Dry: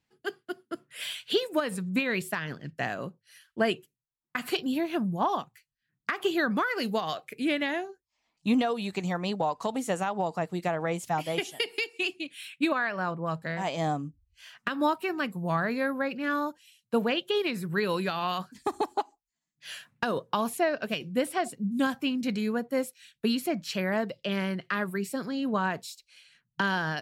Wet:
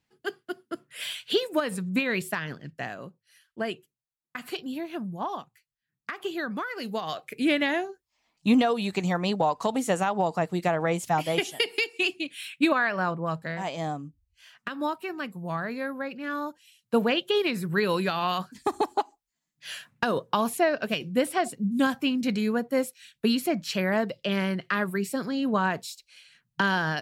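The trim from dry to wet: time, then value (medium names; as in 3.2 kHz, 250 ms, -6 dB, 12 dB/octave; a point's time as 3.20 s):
2.39 s +1.5 dB
3.01 s -5 dB
6.78 s -5 dB
7.40 s +4 dB
12.99 s +4 dB
13.98 s -3.5 dB
16.29 s -3.5 dB
16.95 s +3 dB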